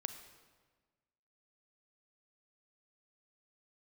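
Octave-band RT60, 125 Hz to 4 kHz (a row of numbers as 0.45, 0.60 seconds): 1.7, 1.6, 1.5, 1.4, 1.2, 1.1 seconds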